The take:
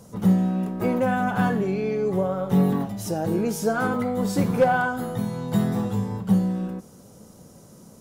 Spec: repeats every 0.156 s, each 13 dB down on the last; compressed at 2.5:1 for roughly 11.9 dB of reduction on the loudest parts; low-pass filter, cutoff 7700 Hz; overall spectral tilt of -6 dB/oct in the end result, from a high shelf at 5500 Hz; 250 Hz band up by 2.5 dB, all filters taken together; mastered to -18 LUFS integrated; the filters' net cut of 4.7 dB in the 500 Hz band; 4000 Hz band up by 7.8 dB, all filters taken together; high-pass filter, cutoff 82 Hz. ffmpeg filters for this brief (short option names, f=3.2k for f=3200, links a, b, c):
-af "highpass=82,lowpass=7.7k,equalizer=f=250:t=o:g=5,equalizer=f=500:t=o:g=-7,equalizer=f=4k:t=o:g=7,highshelf=f=5.5k:g=8,acompressor=threshold=-31dB:ratio=2.5,aecho=1:1:156|312|468:0.224|0.0493|0.0108,volume=12.5dB"